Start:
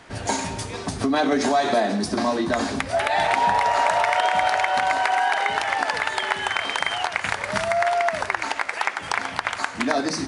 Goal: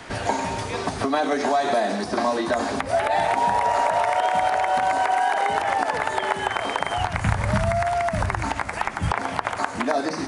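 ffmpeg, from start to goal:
ffmpeg -i in.wav -filter_complex "[0:a]acrossover=split=480|1000|6800[link_01][link_02][link_03][link_04];[link_01]acompressor=threshold=-39dB:ratio=4[link_05];[link_02]acompressor=threshold=-30dB:ratio=4[link_06];[link_03]acompressor=threshold=-38dB:ratio=4[link_07];[link_04]acompressor=threshold=-45dB:ratio=4[link_08];[link_05][link_06][link_07][link_08]amix=inputs=4:normalize=0,asplit=3[link_09][link_10][link_11];[link_09]afade=type=out:start_time=6.97:duration=0.02[link_12];[link_10]asubboost=boost=11:cutoff=130,afade=type=in:start_time=6.97:duration=0.02,afade=type=out:start_time=9.1:duration=0.02[link_13];[link_11]afade=type=in:start_time=9.1:duration=0.02[link_14];[link_12][link_13][link_14]amix=inputs=3:normalize=0,acrossover=split=3200[link_15][link_16];[link_16]acompressor=threshold=-45dB:ratio=4:attack=1:release=60[link_17];[link_15][link_17]amix=inputs=2:normalize=0,volume=7.5dB" out.wav

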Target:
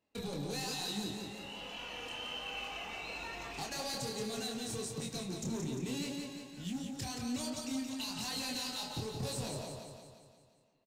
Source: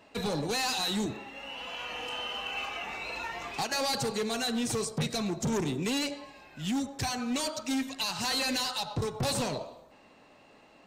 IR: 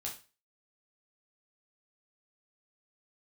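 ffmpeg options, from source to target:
-af "equalizer=frequency=1300:width=0.42:gain=-7,acompressor=threshold=-37dB:ratio=3,flanger=delay=22.5:depth=5.2:speed=1.2,agate=range=-19dB:threshold=-58dB:ratio=16:detection=peak,aecho=1:1:175|350|525|700|875|1050|1225:0.562|0.309|0.17|0.0936|0.0515|0.0283|0.0156,volume=1dB"

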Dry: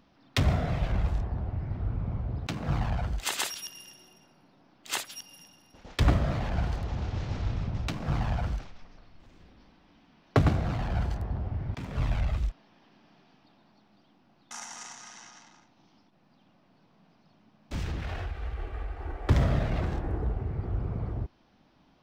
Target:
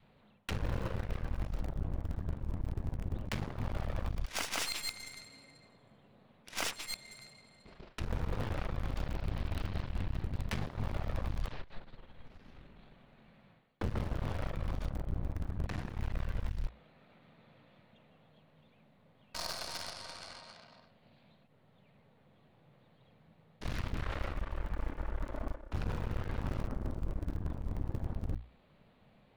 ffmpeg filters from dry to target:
ffmpeg -i in.wav -filter_complex "[0:a]asetrate=33075,aresample=44100,adynamicequalizer=threshold=0.00316:dfrequency=430:dqfactor=1.5:tfrequency=430:tqfactor=1.5:attack=5:release=100:ratio=0.375:range=3:mode=cutabove:tftype=bell,asplit=2[link_01][link_02];[link_02]acrusher=bits=3:dc=4:mix=0:aa=0.000001,volume=-10dB[link_03];[link_01][link_03]amix=inputs=2:normalize=0,bandreject=frequency=60:width_type=h:width=6,bandreject=frequency=120:width_type=h:width=6,bandreject=frequency=180:width_type=h:width=6,areverse,acompressor=threshold=-33dB:ratio=16,areverse,aeval=exprs='0.0668*(cos(1*acos(clip(val(0)/0.0668,-1,1)))-cos(1*PI/2))+0.00168*(cos(7*acos(clip(val(0)/0.0668,-1,1)))-cos(7*PI/2))+0.0106*(cos(8*acos(clip(val(0)/0.0668,-1,1)))-cos(8*PI/2))':channel_layout=same,volume=1dB" out.wav

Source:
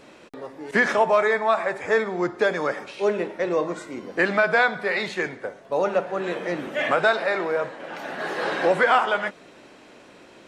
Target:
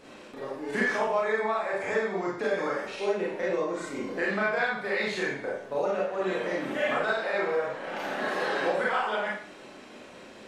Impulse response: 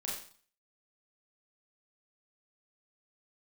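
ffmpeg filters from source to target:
-filter_complex "[0:a]acompressor=threshold=-28dB:ratio=3[link_01];[1:a]atrim=start_sample=2205[link_02];[link_01][link_02]afir=irnorm=-1:irlink=0"

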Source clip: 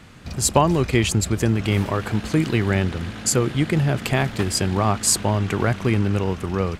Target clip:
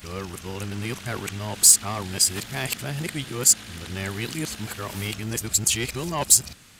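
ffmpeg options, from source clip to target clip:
ffmpeg -i in.wav -af "areverse,acontrast=74,crystalizer=i=6.5:c=0,volume=-17.5dB" out.wav

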